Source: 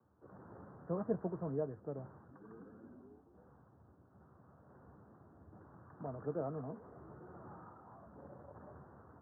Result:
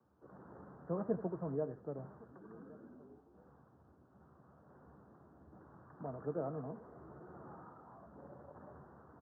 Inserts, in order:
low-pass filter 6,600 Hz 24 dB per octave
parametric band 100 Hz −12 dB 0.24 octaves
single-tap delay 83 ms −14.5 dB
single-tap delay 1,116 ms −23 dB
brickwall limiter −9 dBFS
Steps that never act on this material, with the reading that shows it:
low-pass filter 6,600 Hz: nothing at its input above 1,500 Hz
brickwall limiter −9 dBFS: peak of its input −23.0 dBFS

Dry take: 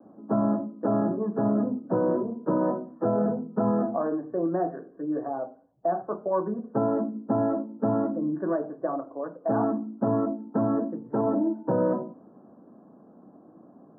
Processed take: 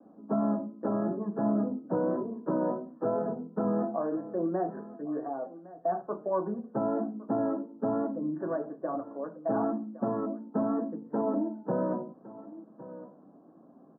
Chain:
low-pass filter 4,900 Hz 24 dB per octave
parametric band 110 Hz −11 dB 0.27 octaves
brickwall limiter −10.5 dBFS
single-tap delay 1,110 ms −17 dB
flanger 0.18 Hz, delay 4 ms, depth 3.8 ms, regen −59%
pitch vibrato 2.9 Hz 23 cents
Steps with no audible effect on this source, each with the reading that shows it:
low-pass filter 4,900 Hz: nothing at its input above 1,400 Hz
brickwall limiter −10.5 dBFS: peak of its input −13.0 dBFS

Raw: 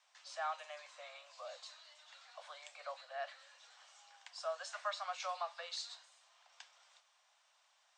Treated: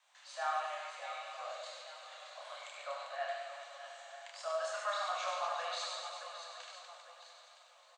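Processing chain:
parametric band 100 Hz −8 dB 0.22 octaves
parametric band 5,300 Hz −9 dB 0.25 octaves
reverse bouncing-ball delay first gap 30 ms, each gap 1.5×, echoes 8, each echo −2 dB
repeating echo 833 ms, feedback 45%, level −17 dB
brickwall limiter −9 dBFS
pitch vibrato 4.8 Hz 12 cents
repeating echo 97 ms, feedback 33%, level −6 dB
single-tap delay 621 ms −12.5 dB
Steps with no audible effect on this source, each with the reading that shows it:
parametric band 100 Hz: nothing at its input below 480 Hz
brickwall limiter −9 dBFS: peak of its input −24.0 dBFS

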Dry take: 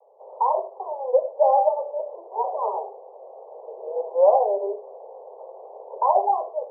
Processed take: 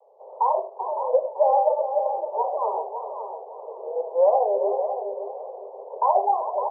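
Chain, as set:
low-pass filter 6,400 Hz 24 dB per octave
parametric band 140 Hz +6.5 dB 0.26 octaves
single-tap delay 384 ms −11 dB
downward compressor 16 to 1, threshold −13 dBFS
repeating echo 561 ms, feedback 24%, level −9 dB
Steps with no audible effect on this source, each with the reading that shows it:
low-pass filter 6,400 Hz: nothing at its input above 1,100 Hz
parametric band 140 Hz: nothing at its input below 360 Hz

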